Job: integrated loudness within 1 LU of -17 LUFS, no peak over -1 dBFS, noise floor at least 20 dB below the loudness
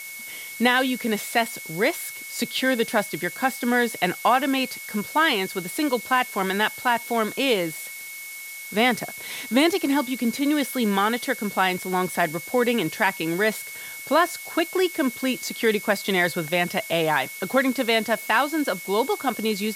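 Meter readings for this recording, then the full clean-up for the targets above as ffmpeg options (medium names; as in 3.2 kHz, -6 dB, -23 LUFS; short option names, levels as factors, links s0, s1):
steady tone 2.2 kHz; tone level -37 dBFS; noise floor -37 dBFS; noise floor target -44 dBFS; loudness -23.5 LUFS; peak level -6.0 dBFS; loudness target -17.0 LUFS
-> -af "bandreject=f=2200:w=30"
-af "afftdn=nr=7:nf=-37"
-af "volume=2.11,alimiter=limit=0.891:level=0:latency=1"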